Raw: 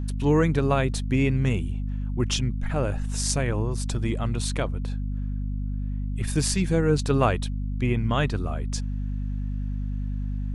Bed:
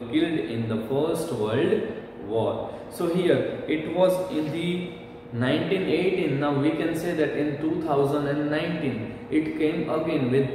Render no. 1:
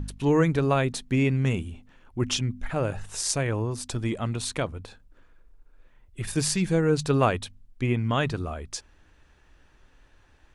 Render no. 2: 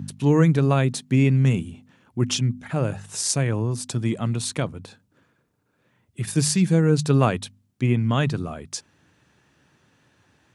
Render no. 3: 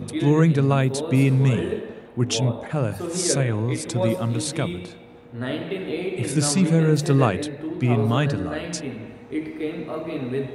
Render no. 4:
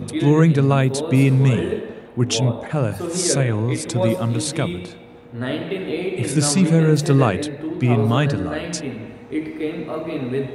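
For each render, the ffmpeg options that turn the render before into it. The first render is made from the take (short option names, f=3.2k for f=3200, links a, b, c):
-af "bandreject=f=50:t=h:w=4,bandreject=f=100:t=h:w=4,bandreject=f=150:t=h:w=4,bandreject=f=200:t=h:w=4,bandreject=f=250:t=h:w=4"
-af "highpass=f=120:w=0.5412,highpass=f=120:w=1.3066,bass=f=250:g=9,treble=f=4k:g=4"
-filter_complex "[1:a]volume=-4.5dB[a];[0:a][a]amix=inputs=2:normalize=0"
-af "volume=3dB,alimiter=limit=-3dB:level=0:latency=1"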